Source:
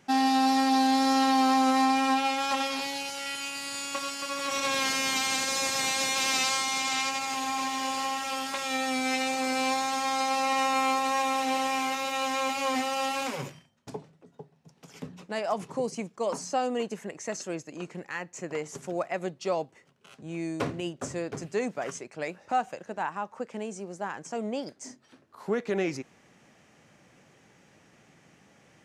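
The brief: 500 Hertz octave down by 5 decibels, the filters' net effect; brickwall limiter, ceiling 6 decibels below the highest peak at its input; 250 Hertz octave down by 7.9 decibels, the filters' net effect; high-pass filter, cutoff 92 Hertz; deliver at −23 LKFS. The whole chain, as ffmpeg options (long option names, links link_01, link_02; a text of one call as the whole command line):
ffmpeg -i in.wav -af "highpass=92,equalizer=frequency=250:width_type=o:gain=-7.5,equalizer=frequency=500:width_type=o:gain=-4,volume=9dB,alimiter=limit=-13.5dB:level=0:latency=1" out.wav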